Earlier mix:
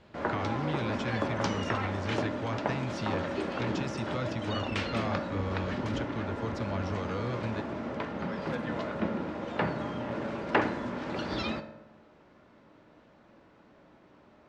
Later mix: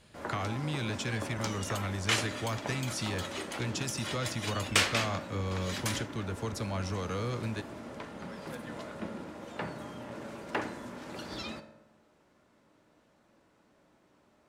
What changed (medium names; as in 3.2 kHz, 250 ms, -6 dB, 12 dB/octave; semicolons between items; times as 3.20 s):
first sound -8.5 dB; second sound +7.5 dB; master: remove distance through air 170 m